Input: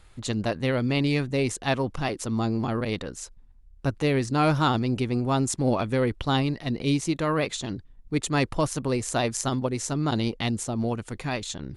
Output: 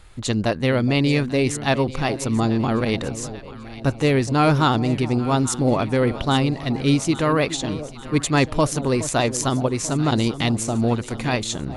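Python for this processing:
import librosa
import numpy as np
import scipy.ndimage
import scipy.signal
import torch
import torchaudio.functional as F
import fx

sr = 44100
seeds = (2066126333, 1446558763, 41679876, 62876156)

p1 = fx.rider(x, sr, range_db=10, speed_s=2.0)
p2 = x + F.gain(torch.from_numpy(p1), -2.5).numpy()
y = fx.echo_alternate(p2, sr, ms=419, hz=850.0, feedback_pct=72, wet_db=-12.5)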